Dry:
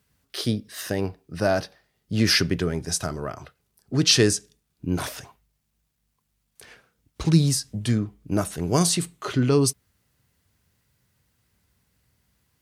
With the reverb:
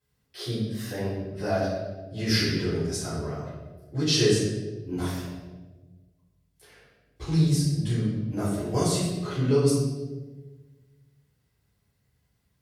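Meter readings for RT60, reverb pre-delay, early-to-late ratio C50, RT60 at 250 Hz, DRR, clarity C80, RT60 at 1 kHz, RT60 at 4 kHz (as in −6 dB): 1.4 s, 3 ms, 0.0 dB, 1.7 s, −14.5 dB, 3.0 dB, 1.1 s, 0.90 s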